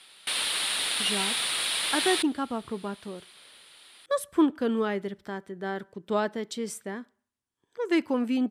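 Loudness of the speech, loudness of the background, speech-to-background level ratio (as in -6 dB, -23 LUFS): -30.0 LUFS, -26.5 LUFS, -3.5 dB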